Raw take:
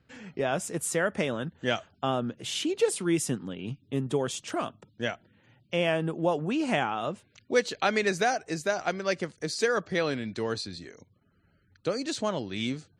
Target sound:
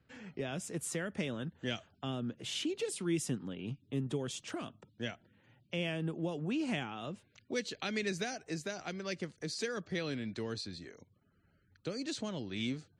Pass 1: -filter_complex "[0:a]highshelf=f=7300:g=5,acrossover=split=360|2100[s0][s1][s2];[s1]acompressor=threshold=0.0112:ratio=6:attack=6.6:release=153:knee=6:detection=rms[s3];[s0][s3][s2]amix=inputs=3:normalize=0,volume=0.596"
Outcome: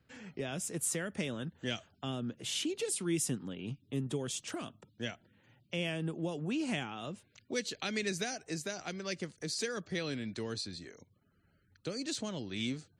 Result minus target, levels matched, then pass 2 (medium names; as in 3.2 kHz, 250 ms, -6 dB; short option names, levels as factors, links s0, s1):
8 kHz band +4.5 dB
-filter_complex "[0:a]highshelf=f=7300:g=-6.5,acrossover=split=360|2100[s0][s1][s2];[s1]acompressor=threshold=0.0112:ratio=6:attack=6.6:release=153:knee=6:detection=rms[s3];[s0][s3][s2]amix=inputs=3:normalize=0,volume=0.596"